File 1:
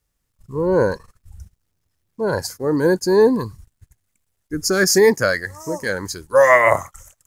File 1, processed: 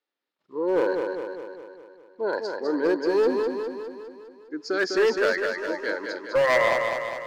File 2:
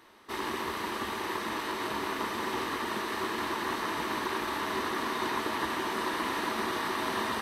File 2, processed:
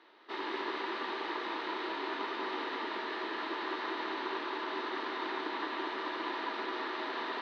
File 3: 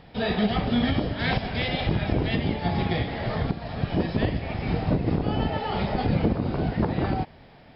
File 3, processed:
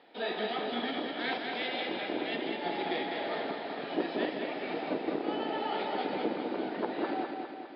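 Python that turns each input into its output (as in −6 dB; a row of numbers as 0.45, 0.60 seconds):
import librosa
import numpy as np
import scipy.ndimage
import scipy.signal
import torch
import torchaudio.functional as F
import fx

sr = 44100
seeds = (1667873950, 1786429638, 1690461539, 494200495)

p1 = scipy.signal.sosfilt(scipy.signal.ellip(3, 1.0, 60, [300.0, 4100.0], 'bandpass', fs=sr, output='sos'), x)
p2 = fx.notch(p1, sr, hz=1100.0, q=14.0)
p3 = fx.rider(p2, sr, range_db=3, speed_s=2.0)
p4 = np.clip(p3, -10.0 ** (-12.0 / 20.0), 10.0 ** (-12.0 / 20.0))
p5 = p4 + fx.echo_feedback(p4, sr, ms=203, feedback_pct=57, wet_db=-5.0, dry=0)
y = p5 * librosa.db_to_amplitude(-5.0)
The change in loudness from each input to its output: −7.5, −4.5, −8.0 LU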